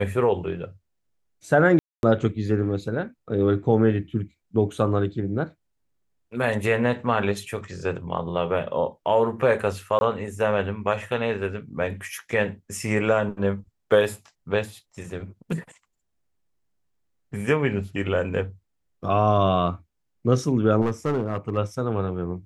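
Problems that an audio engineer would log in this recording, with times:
1.79–2.03 s: dropout 241 ms
9.99–10.01 s: dropout 21 ms
20.81–21.58 s: clipped -19 dBFS

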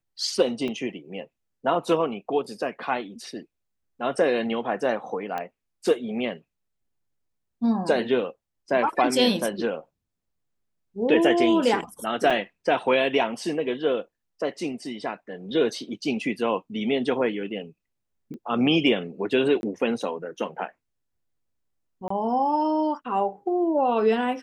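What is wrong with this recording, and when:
0.68 s: dropout 4.1 ms
5.38 s: pop -18 dBFS
12.30–12.31 s: dropout 5.2 ms
18.34 s: pop -30 dBFS
19.61–19.63 s: dropout 21 ms
22.08–22.10 s: dropout 24 ms

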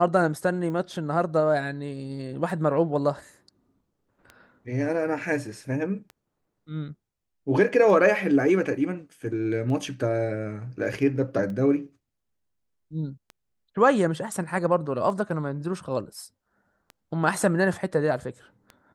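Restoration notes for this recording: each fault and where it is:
tick 33 1/3 rpm -26 dBFS

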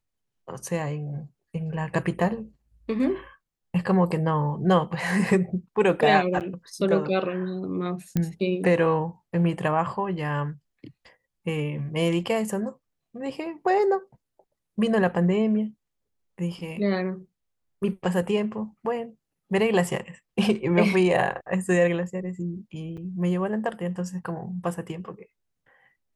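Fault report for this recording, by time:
6.40–6.41 s: dropout 8.2 ms
8.17 s: pop -12 dBFS
22.97–22.98 s: dropout 6.6 ms

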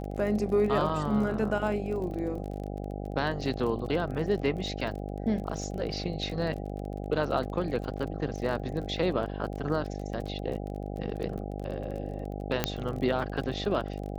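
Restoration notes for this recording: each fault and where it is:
buzz 50 Hz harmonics 16 -36 dBFS
crackle 30 per s -36 dBFS
0.89 s: dropout 3.7 ms
12.64 s: pop -9 dBFS

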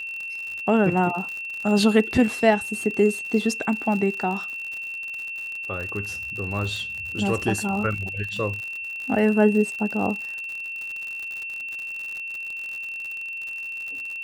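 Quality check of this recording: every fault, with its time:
crackle 79 per s -30 dBFS
whine 2.7 kHz -30 dBFS

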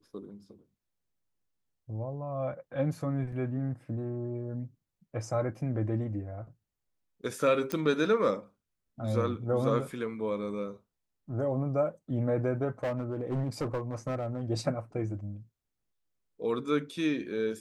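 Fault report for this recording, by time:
3.32 s: dropout 4 ms
7.72 s: pop -16 dBFS
12.83–14.44 s: clipped -27.5 dBFS

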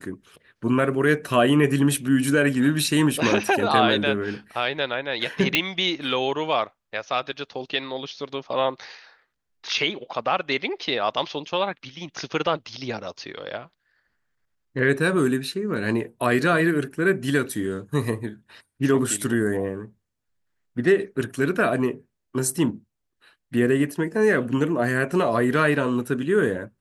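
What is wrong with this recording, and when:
5.55 s: pop -3 dBFS

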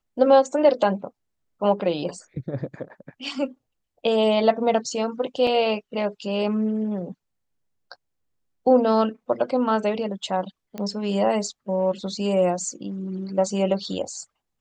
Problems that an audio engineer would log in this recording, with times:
5.47 s: dropout 2.6 ms
10.78 s: pop -19 dBFS

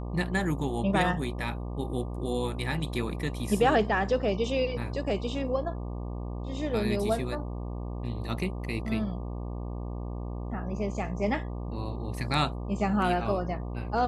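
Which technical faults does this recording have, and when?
buzz 60 Hz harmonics 20 -35 dBFS

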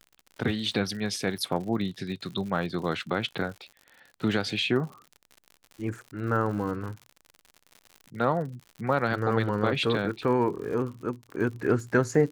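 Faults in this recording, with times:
crackle 74 per s -37 dBFS

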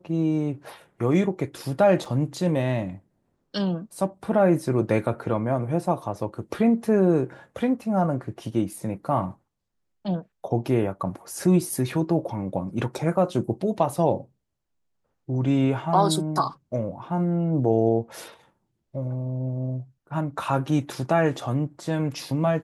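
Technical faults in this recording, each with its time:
2.05 s: dropout 4.1 ms

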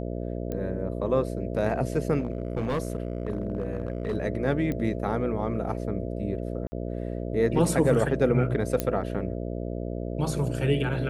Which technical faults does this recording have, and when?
buzz 60 Hz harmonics 11 -32 dBFS
0.52 s: pop -20 dBFS
2.19–4.16 s: clipped -23 dBFS
4.72 s: pop -19 dBFS
6.67–6.72 s: dropout 50 ms
8.80 s: pop -10 dBFS

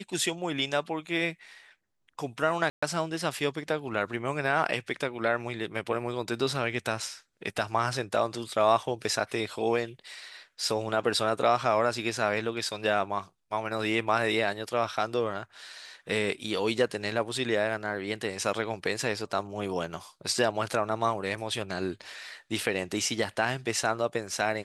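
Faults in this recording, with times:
2.70–2.83 s: dropout 125 ms

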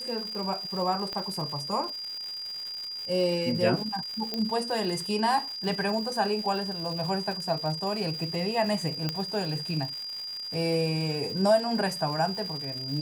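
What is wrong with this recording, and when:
crackle 270 per s -35 dBFS
whine 4.8 kHz -34 dBFS
1.13 s: pop -20 dBFS
4.34 s: pop -16 dBFS
5.56 s: dropout 2.1 ms
9.09 s: pop -14 dBFS

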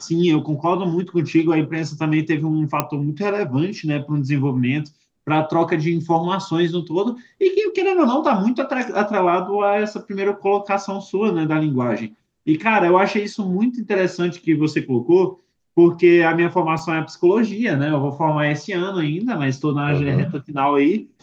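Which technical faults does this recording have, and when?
2.80 s: pop -3 dBFS
16.79 s: dropout 2.4 ms

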